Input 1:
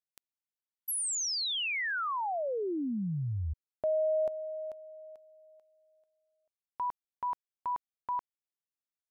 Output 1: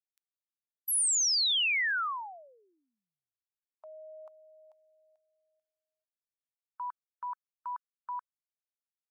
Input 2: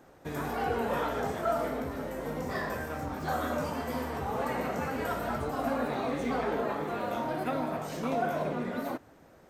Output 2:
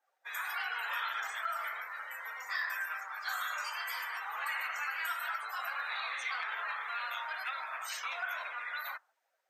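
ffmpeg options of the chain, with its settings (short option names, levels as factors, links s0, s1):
-af "afftdn=nr=24:nf=-50,highpass=f=1300:w=0.5412,highpass=f=1300:w=1.3066,acompressor=threshold=0.0158:ratio=3:attack=0.17:release=522:detection=peak,adynamicequalizer=threshold=0.002:dfrequency=1800:dqfactor=0.7:tfrequency=1800:tqfactor=0.7:attack=5:release=100:ratio=0.438:range=2:mode=boostabove:tftype=highshelf,volume=2"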